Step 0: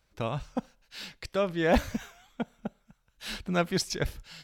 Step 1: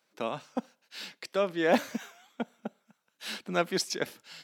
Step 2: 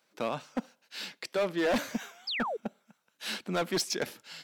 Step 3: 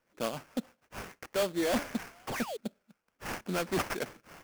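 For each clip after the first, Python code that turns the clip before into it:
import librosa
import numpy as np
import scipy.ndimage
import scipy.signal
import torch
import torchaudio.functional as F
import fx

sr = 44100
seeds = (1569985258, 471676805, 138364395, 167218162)

y1 = scipy.signal.sosfilt(scipy.signal.butter(4, 210.0, 'highpass', fs=sr, output='sos'), x)
y2 = fx.spec_paint(y1, sr, seeds[0], shape='fall', start_s=2.27, length_s=0.3, low_hz=390.0, high_hz=5400.0, level_db=-35.0)
y2 = np.clip(y2, -10.0 ** (-26.0 / 20.0), 10.0 ** (-26.0 / 20.0))
y2 = y2 * 10.0 ** (2.0 / 20.0)
y3 = fx.rotary_switch(y2, sr, hz=7.0, then_hz=0.6, switch_at_s=0.84)
y3 = fx.sample_hold(y3, sr, seeds[1], rate_hz=3900.0, jitter_pct=20)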